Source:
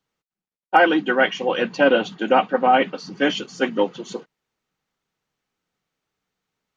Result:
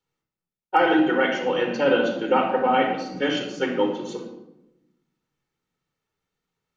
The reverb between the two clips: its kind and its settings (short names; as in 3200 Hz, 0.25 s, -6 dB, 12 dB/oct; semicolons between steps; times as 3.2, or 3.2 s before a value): shoebox room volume 3000 m³, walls furnished, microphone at 4.3 m; gain -6.5 dB